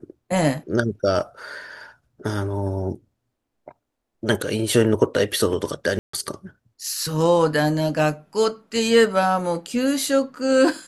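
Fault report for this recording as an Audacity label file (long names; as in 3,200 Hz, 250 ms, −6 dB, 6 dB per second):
5.990000	6.130000	drop-out 144 ms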